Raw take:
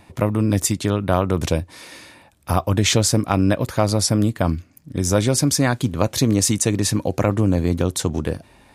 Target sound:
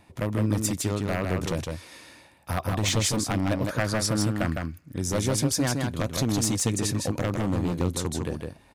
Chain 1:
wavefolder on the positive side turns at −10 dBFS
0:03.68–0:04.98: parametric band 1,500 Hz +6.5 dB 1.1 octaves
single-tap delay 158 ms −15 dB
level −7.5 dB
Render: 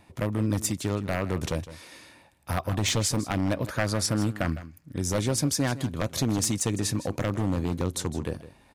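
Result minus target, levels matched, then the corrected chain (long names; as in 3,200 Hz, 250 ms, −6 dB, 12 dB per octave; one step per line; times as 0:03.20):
echo-to-direct −11 dB
wavefolder on the positive side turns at −10 dBFS
0:03.68–0:04.98: parametric band 1,500 Hz +6.5 dB 1.1 octaves
single-tap delay 158 ms −4 dB
level −7.5 dB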